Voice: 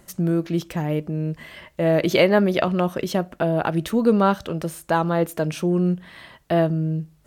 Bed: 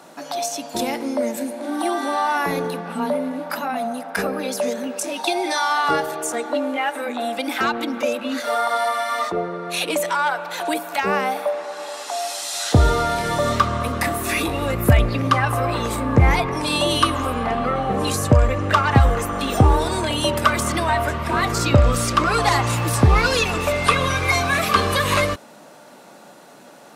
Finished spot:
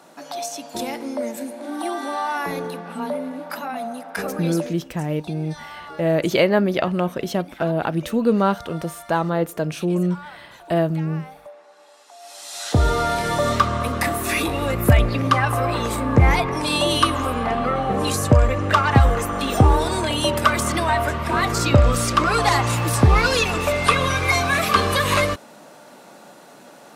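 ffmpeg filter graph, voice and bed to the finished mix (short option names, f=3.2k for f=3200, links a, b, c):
-filter_complex "[0:a]adelay=4200,volume=-0.5dB[a];[1:a]volume=15dB,afade=t=out:st=4.52:d=0.24:silence=0.177828,afade=t=in:st=12.19:d=0.89:silence=0.112202[b];[a][b]amix=inputs=2:normalize=0"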